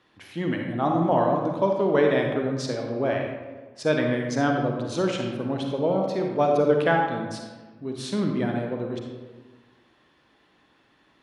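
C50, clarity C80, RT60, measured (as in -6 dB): 2.5 dB, 4.5 dB, 1.4 s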